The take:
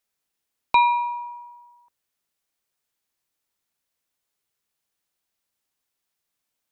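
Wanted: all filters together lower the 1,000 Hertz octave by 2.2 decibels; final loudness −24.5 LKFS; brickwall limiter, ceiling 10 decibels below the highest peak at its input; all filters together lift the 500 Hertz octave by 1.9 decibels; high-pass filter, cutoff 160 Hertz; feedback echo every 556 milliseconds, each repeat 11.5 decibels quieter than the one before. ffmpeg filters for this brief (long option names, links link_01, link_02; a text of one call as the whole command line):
ffmpeg -i in.wav -af "highpass=160,equalizer=frequency=500:width_type=o:gain=3.5,equalizer=frequency=1000:width_type=o:gain=-3,alimiter=limit=-17dB:level=0:latency=1,aecho=1:1:556|1112|1668:0.266|0.0718|0.0194,volume=4dB" out.wav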